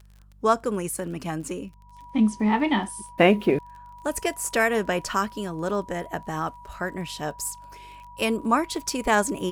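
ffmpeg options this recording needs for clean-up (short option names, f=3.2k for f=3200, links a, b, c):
-af "adeclick=t=4,bandreject=f=49.3:t=h:w=4,bandreject=f=98.6:t=h:w=4,bandreject=f=147.9:t=h:w=4,bandreject=f=197.2:t=h:w=4,bandreject=f=970:w=30"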